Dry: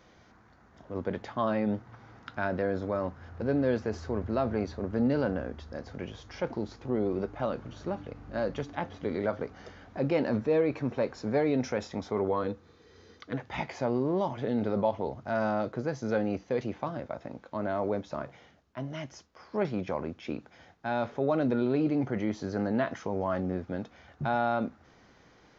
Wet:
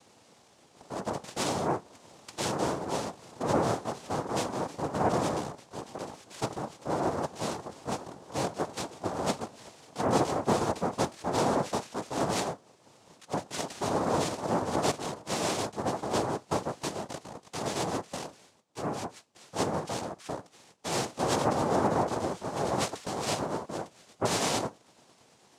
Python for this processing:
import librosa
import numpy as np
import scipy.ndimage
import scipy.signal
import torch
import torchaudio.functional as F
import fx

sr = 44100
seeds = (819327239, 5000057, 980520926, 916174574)

y = fx.pitch_glide(x, sr, semitones=3.0, runs='starting unshifted')
y = fx.dynamic_eq(y, sr, hz=160.0, q=3.7, threshold_db=-53.0, ratio=4.0, max_db=8)
y = fx.noise_vocoder(y, sr, seeds[0], bands=2)